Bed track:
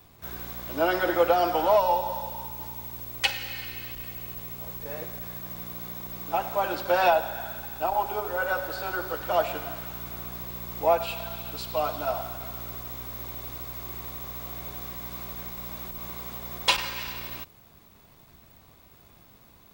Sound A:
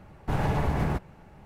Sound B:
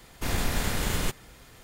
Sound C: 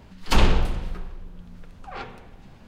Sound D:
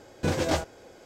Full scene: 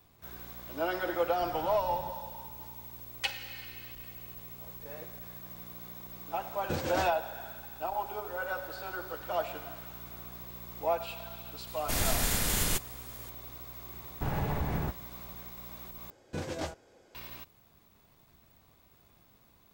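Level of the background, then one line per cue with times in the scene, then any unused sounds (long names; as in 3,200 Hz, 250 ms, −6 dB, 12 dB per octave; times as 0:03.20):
bed track −8 dB
0:01.13: mix in A −9.5 dB + downward compressor, threshold −34 dBFS
0:06.46: mix in D −8 dB
0:11.67: mix in B −4 dB + high-shelf EQ 4,700 Hz +11.5 dB
0:13.93: mix in A −6 dB
0:16.10: overwrite with D −10.5 dB
not used: C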